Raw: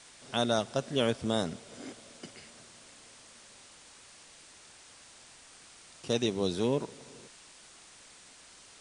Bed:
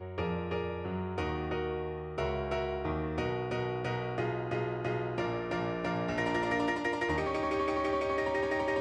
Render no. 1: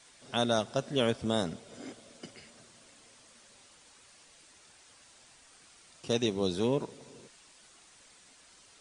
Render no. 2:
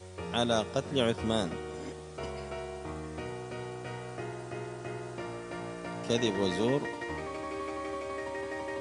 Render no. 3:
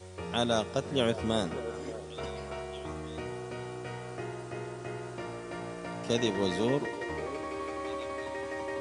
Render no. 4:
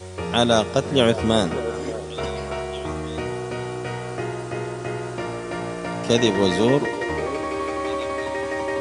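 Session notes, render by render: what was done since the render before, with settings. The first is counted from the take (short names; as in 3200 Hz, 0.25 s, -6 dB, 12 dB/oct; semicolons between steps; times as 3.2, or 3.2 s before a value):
denoiser 6 dB, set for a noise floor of -55 dBFS
add bed -6 dB
delay with a stepping band-pass 0.588 s, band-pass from 460 Hz, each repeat 1.4 oct, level -10 dB
gain +10.5 dB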